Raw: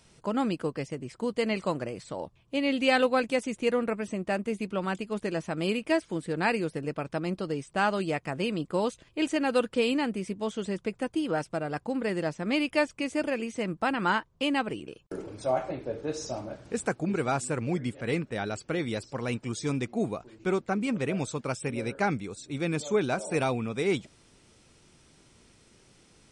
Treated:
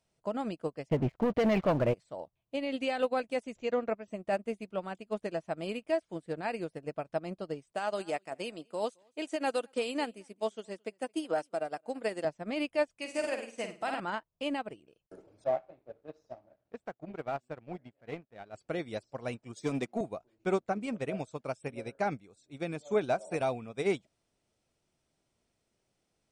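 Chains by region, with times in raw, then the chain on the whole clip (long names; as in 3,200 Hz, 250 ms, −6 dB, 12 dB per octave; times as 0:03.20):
0:00.89–0:01.94: low-pass filter 3,100 Hz 24 dB per octave + low-shelf EQ 130 Hz +11.5 dB + leveller curve on the samples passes 3
0:03.55–0:04.08: Butterworth low-pass 7,400 Hz 96 dB per octave + upward compression, threshold −30 dBFS + multiband upward and downward expander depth 40%
0:07.72–0:12.25: high-pass filter 240 Hz + high-shelf EQ 4,800 Hz +10 dB + single-tap delay 219 ms −21 dB
0:12.97–0:14.00: spectral tilt +2.5 dB per octave + flutter between parallel walls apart 8.9 metres, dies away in 0.71 s
0:15.44–0:18.54: low-pass filter 3,600 Hz + power curve on the samples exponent 1.4
0:19.56–0:20.01: high-pass filter 140 Hz 24 dB per octave + leveller curve on the samples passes 1
whole clip: parametric band 660 Hz +9 dB 0.56 octaves; brickwall limiter −18.5 dBFS; expander for the loud parts 2.5 to 1, over −37 dBFS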